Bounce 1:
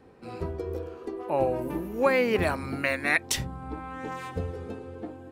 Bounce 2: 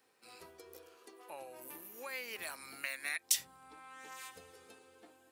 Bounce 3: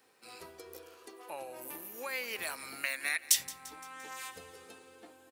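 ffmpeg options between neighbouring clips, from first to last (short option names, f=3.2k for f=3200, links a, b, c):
-af "acompressor=threshold=-26dB:ratio=4,aderivative,volume=2.5dB"
-filter_complex "[0:a]aecho=1:1:172|344|516|688|860:0.112|0.0617|0.0339|0.0187|0.0103,asplit=2[a][b];[b]aeval=exprs='0.282*sin(PI/2*1.78*val(0)/0.282)':c=same,volume=-10.5dB[c];[a][c]amix=inputs=2:normalize=0"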